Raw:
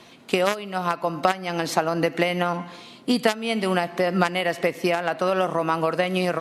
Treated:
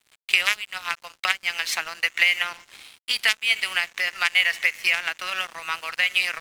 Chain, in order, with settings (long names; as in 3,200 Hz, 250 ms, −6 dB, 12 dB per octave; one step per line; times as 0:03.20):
high-pass with resonance 2,200 Hz, resonance Q 2.3
dead-zone distortion −41.5 dBFS
level +4 dB